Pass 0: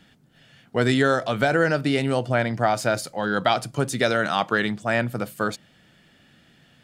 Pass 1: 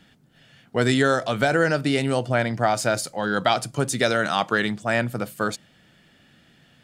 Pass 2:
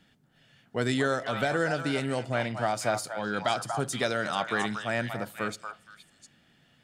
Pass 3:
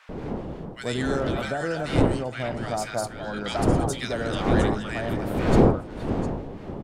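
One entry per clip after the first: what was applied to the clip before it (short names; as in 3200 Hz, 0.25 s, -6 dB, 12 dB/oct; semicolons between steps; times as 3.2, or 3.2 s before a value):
dynamic EQ 7900 Hz, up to +5 dB, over -44 dBFS, Q 0.82
delay with a stepping band-pass 0.235 s, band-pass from 990 Hz, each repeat 1.4 oct, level -2.5 dB; on a send at -21 dB: reverb RT60 0.70 s, pre-delay 4 ms; on the sum: gain -7.5 dB
wind noise 410 Hz -26 dBFS; bands offset in time highs, lows 90 ms, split 1400 Hz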